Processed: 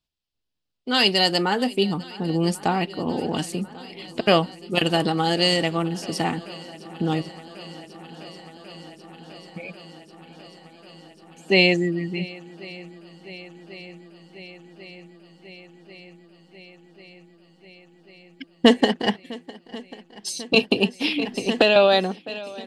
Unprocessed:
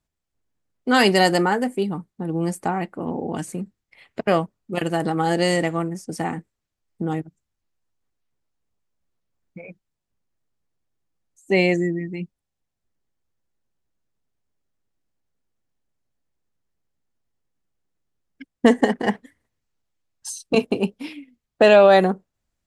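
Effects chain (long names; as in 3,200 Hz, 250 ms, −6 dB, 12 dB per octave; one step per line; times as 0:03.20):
flat-topped bell 3,700 Hz +11.5 dB 1.2 octaves
speech leveller within 4 dB 0.5 s
on a send: feedback echo with a long and a short gap by turns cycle 1,092 ms, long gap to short 1.5 to 1, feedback 76%, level −21 dB
0:20.71–0:21.76: on the sum: multiband upward and downward compressor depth 100%
level −2.5 dB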